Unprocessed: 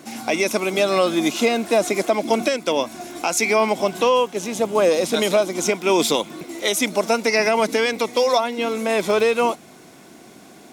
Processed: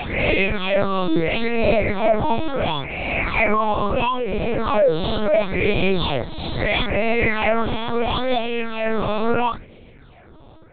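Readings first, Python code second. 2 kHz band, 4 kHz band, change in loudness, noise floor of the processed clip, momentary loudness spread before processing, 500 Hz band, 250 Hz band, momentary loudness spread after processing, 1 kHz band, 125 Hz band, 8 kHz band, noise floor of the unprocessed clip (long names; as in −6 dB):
+1.5 dB, −2.5 dB, −1.0 dB, −45 dBFS, 6 LU, −2.0 dB, 0.0 dB, 5 LU, 0.0 dB, +9.5 dB, below −40 dB, −45 dBFS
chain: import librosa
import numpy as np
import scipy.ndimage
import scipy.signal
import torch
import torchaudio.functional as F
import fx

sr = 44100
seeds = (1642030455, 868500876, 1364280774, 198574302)

y = fx.spec_swells(x, sr, rise_s=1.99)
y = fx.phaser_stages(y, sr, stages=6, low_hz=130.0, high_hz=1400.0, hz=0.74, feedback_pct=20)
y = fx.lpc_vocoder(y, sr, seeds[0], excitation='pitch_kept', order=8)
y = fx.sustainer(y, sr, db_per_s=140.0)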